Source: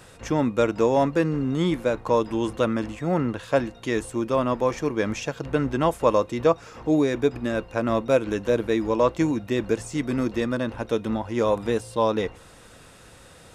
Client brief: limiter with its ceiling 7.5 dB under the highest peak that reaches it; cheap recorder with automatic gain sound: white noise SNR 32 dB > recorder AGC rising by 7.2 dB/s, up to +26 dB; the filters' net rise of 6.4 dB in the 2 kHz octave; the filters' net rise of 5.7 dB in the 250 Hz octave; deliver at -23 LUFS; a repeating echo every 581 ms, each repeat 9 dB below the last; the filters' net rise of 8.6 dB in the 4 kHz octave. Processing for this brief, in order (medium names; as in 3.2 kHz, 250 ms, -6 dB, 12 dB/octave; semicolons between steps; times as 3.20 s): peaking EQ 250 Hz +7 dB; peaking EQ 2 kHz +6 dB; peaking EQ 4 kHz +8.5 dB; peak limiter -10.5 dBFS; feedback delay 581 ms, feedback 35%, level -9 dB; white noise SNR 32 dB; recorder AGC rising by 7.2 dB/s, up to +26 dB; trim -1 dB